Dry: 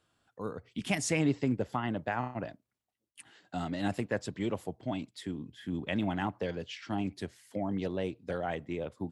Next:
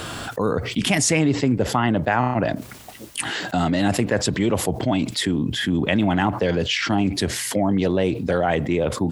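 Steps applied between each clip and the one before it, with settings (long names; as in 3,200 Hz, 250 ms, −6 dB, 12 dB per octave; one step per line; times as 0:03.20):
envelope flattener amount 70%
level +7.5 dB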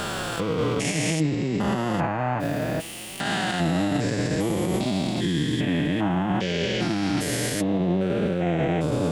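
spectrum averaged block by block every 400 ms
brickwall limiter −21 dBFS, peak gain reduction 10 dB
flanger 0.61 Hz, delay 4.9 ms, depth 2.2 ms, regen +33%
level +9 dB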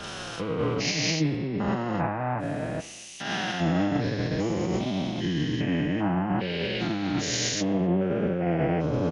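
hearing-aid frequency compression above 2,600 Hz 1.5 to 1
far-end echo of a speakerphone 260 ms, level −18 dB
multiband upward and downward expander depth 100%
level −2 dB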